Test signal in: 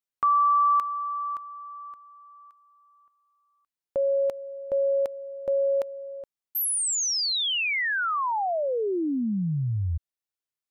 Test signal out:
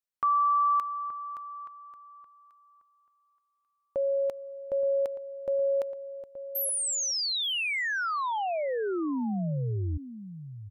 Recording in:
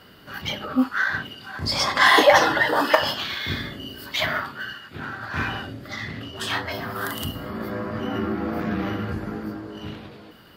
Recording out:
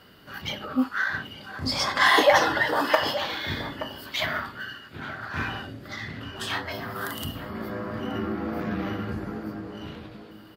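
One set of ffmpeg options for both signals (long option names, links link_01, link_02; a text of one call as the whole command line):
ffmpeg -i in.wav -filter_complex "[0:a]asplit=2[link_01][link_02];[link_02]adelay=874.6,volume=-12dB,highshelf=frequency=4000:gain=-19.7[link_03];[link_01][link_03]amix=inputs=2:normalize=0,volume=-3.5dB" out.wav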